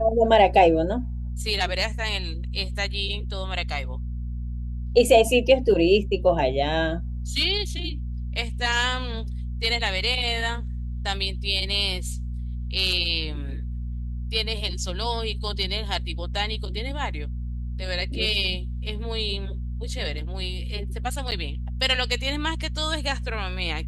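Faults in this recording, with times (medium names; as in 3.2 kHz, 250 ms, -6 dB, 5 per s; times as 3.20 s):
hum 60 Hz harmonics 4 -30 dBFS
21.31–21.32 s: dropout 7.8 ms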